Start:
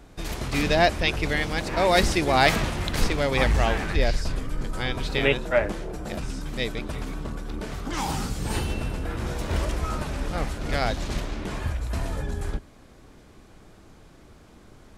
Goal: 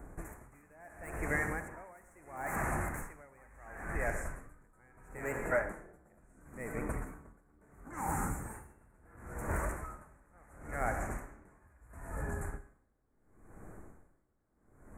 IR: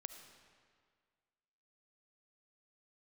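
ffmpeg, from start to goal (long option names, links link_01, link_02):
-filter_complex "[0:a]acrossover=split=850[link_01][link_02];[link_01]acompressor=threshold=-32dB:ratio=6[link_03];[link_02]asoftclip=type=tanh:threshold=-24dB[link_04];[link_03][link_04]amix=inputs=2:normalize=0,asuperstop=centerf=3900:order=8:qfactor=0.72[link_05];[1:a]atrim=start_sample=2205,asetrate=57330,aresample=44100[link_06];[link_05][link_06]afir=irnorm=-1:irlink=0,aeval=exprs='val(0)*pow(10,-29*(0.5-0.5*cos(2*PI*0.73*n/s))/20)':channel_layout=same,volume=7dB"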